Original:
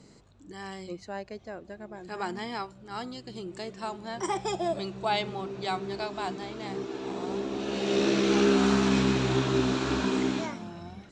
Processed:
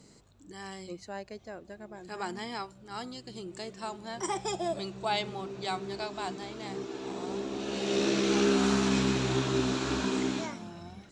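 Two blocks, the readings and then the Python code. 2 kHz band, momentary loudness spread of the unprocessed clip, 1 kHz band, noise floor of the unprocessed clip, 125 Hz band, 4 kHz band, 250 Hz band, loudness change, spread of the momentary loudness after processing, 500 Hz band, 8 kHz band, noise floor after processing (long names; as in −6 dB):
−2.5 dB, 17 LU, −3.0 dB, −54 dBFS, −3.0 dB, −1.0 dB, −3.0 dB, −2.5 dB, 17 LU, −3.0 dB, +2.0 dB, −56 dBFS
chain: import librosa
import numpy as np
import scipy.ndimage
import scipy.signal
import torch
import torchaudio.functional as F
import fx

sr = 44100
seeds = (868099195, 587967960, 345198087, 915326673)

y = fx.high_shelf(x, sr, hz=7200.0, db=11.0)
y = y * librosa.db_to_amplitude(-3.0)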